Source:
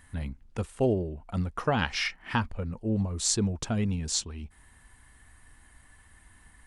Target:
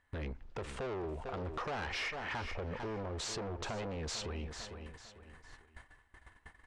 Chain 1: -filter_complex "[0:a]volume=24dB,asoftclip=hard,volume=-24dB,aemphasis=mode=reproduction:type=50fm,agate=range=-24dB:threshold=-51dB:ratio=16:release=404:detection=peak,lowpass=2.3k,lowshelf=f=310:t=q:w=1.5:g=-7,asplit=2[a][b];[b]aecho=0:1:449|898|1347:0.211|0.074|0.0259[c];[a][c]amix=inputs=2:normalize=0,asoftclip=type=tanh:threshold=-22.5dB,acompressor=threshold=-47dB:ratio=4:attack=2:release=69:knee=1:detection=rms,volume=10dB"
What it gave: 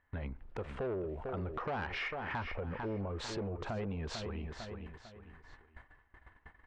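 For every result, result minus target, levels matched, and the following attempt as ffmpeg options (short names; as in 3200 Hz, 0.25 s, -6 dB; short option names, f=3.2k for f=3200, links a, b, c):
8000 Hz band -9.5 dB; overloaded stage: distortion -8 dB
-filter_complex "[0:a]volume=24dB,asoftclip=hard,volume=-24dB,aemphasis=mode=reproduction:type=50fm,agate=range=-24dB:threshold=-51dB:ratio=16:release=404:detection=peak,lowpass=6.9k,lowshelf=f=310:t=q:w=1.5:g=-7,asplit=2[a][b];[b]aecho=0:1:449|898|1347:0.211|0.074|0.0259[c];[a][c]amix=inputs=2:normalize=0,asoftclip=type=tanh:threshold=-22.5dB,acompressor=threshold=-47dB:ratio=4:attack=2:release=69:knee=1:detection=rms,volume=10dB"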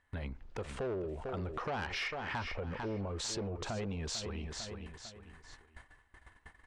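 overloaded stage: distortion -8 dB
-filter_complex "[0:a]volume=34.5dB,asoftclip=hard,volume=-34.5dB,aemphasis=mode=reproduction:type=50fm,agate=range=-24dB:threshold=-51dB:ratio=16:release=404:detection=peak,lowpass=6.9k,lowshelf=f=310:t=q:w=1.5:g=-7,asplit=2[a][b];[b]aecho=0:1:449|898|1347:0.211|0.074|0.0259[c];[a][c]amix=inputs=2:normalize=0,asoftclip=type=tanh:threshold=-22.5dB,acompressor=threshold=-47dB:ratio=4:attack=2:release=69:knee=1:detection=rms,volume=10dB"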